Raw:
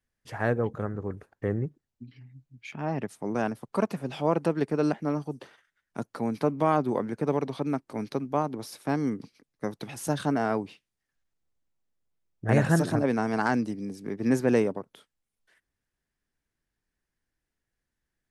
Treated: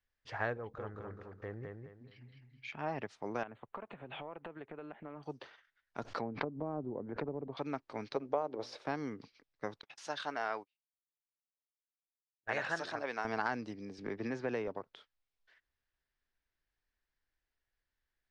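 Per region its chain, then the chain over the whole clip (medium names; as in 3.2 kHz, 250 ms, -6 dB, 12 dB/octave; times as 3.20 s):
0.57–2.69 s: compression 1.5:1, threshold -43 dBFS + feedback delay 210 ms, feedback 32%, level -4 dB
3.43–5.23 s: compression 16:1, threshold -34 dBFS + Butterworth band-stop 5.3 kHz, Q 1.1 + distance through air 85 m
6.03–7.57 s: low-pass that closes with the level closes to 370 Hz, closed at -23.5 dBFS + swell ahead of each attack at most 110 dB/s
8.16–8.86 s: peaking EQ 510 Hz +13.5 dB 1.3 oct + hum notches 60/120/180/240/300/360 Hz
9.81–13.25 s: high-pass 980 Hz 6 dB/octave + gate -44 dBFS, range -36 dB
13.98–14.68 s: distance through air 56 m + three bands compressed up and down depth 40%
whole clip: low-pass 5.1 kHz 24 dB/octave; compression, threshold -25 dBFS; peaking EQ 190 Hz -11.5 dB 2.2 oct; trim -1.5 dB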